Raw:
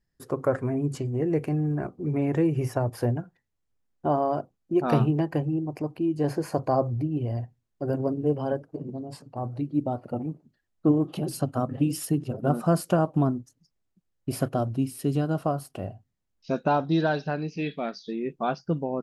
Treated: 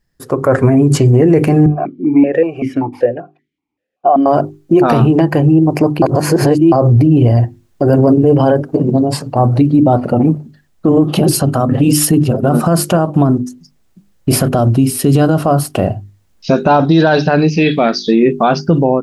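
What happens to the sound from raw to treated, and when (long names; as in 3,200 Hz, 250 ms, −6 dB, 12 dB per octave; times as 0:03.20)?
0:01.66–0:04.26: formant filter that steps through the vowels 5.2 Hz
0:06.02–0:06.72: reverse
0:09.76–0:10.25: high-shelf EQ 11,000 Hz −7 dB
whole clip: mains-hum notches 50/100/150/200/250/300/350/400 Hz; automatic gain control gain up to 13 dB; boost into a limiter +12.5 dB; level −1 dB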